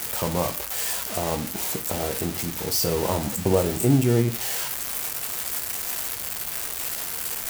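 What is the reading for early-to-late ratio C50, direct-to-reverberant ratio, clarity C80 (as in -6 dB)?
13.5 dB, 7.0 dB, 18.0 dB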